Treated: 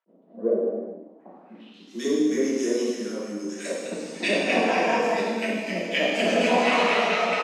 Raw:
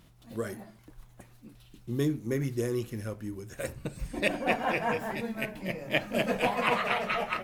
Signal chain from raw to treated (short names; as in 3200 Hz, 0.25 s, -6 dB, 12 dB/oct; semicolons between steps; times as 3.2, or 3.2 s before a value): steep high-pass 180 Hz 96 dB/oct; bell 360 Hz +2 dB 1.7 oct; bands offset in time highs, lows 60 ms, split 1400 Hz; low-pass sweep 550 Hz -> 6200 Hz, 1.1–1.91; non-linear reverb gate 0.47 s falling, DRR -6 dB; attack slew limiter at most 590 dB/s